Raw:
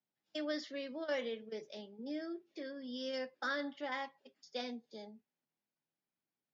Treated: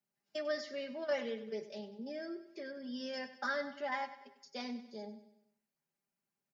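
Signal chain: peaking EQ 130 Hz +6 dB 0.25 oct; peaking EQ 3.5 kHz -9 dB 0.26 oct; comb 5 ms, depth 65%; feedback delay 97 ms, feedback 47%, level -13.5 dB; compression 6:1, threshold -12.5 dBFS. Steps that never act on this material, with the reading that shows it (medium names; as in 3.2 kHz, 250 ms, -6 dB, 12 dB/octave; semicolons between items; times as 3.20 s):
compression, threshold -12.5 dBFS: peak at its input -25.0 dBFS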